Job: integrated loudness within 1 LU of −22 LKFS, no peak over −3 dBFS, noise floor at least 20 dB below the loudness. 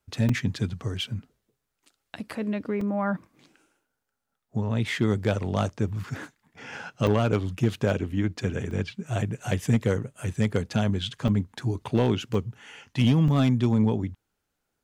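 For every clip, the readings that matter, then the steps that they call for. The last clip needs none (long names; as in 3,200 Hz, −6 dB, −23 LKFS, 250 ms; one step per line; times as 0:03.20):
share of clipped samples 0.4%; peaks flattened at −14.0 dBFS; number of dropouts 7; longest dropout 3.3 ms; integrated loudness −27.0 LKFS; sample peak −14.0 dBFS; target loudness −22.0 LKFS
→ clipped peaks rebuilt −14 dBFS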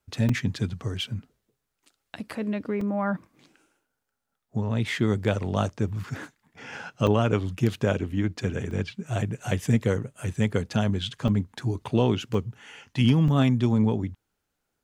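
share of clipped samples 0.0%; number of dropouts 7; longest dropout 3.3 ms
→ repair the gap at 0:00.29/0:02.81/0:07.07/0:08.71/0:11.28/0:12.34/0:13.28, 3.3 ms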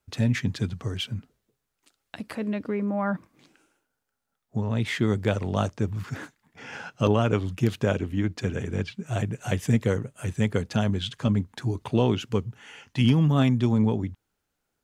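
number of dropouts 0; integrated loudness −26.5 LKFS; sample peak −9.0 dBFS; target loudness −22.0 LKFS
→ level +4.5 dB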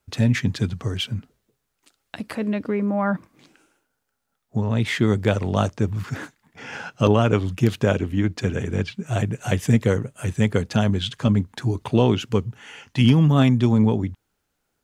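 integrated loudness −22.0 LKFS; sample peak −4.5 dBFS; background noise floor −76 dBFS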